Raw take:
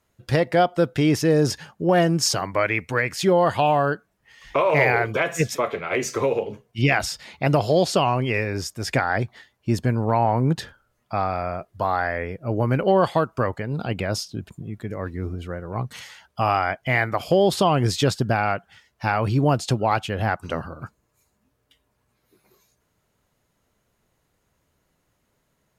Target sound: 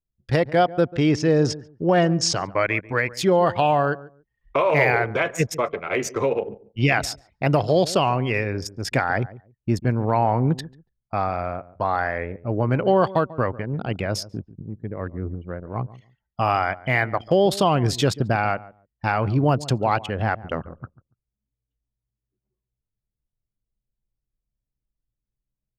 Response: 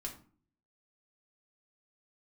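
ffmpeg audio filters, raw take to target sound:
-filter_complex "[0:a]asettb=1/sr,asplit=3[s0][s1][s2];[s0]atrim=end=0.814[s3];[s1]atrim=start=0.81:end=2.59,asetpts=PTS-STARTPTS,afade=t=in:d=0.004:c=qsin,afade=t=out:st=1.776:d=0.004:c=qsin,lowpass=f=7500:w=0.5412,lowpass=f=7500:w=1.3066[s4];[s2]atrim=start=2.586[s5];[s3][s4]acrossfade=d=0.004:c1=hsin:c2=qsin[s6];[s6][s5]acrossfade=d=0.004:c1=qsin:c2=hsin,anlmdn=39.8,asplit=2[s7][s8];[s8]adelay=142,lowpass=f=810:p=1,volume=0.15,asplit=2[s9][s10];[s10]adelay=142,lowpass=f=810:p=1,volume=0.2[s11];[s9][s11]amix=inputs=2:normalize=0[s12];[s7][s12]amix=inputs=2:normalize=0"

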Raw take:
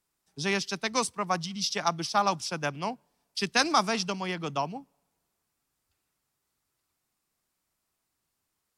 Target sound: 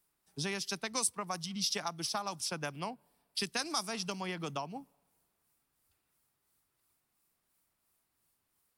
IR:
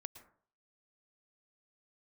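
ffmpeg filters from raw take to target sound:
-filter_complex "[0:a]asettb=1/sr,asplit=3[s0][s1][s2];[s0]atrim=end=2.714[s3];[s1]atrim=start=2.71:end=3.4,asetpts=PTS-STARTPTS,afade=t=in:d=0.004:c=qsin,afade=t=out:st=0.686:d=0.004:c=qsin,equalizer=f=6300:w=4.1:g=-7.5[s4];[s2]atrim=start=3.396[s5];[s3][s4]acrossfade=d=0.004:c1=hsin:c2=qsin[s6];[s6][s5]acrossfade=d=0.004:c1=qsin:c2=hsin,acrossover=split=4700[s7][s8];[s7]acompressor=threshold=0.0178:ratio=6[s9];[s8]tremolo=f=2.9:d=0.61[s10];[s9][s10]amix=inputs=2:normalize=0,aexciter=amount=3:drive=2.5:freq=9000"

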